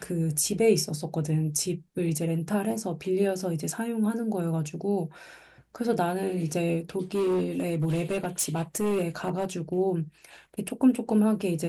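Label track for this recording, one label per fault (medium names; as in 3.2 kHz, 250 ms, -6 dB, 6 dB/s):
7.140000	9.450000	clipped -22 dBFS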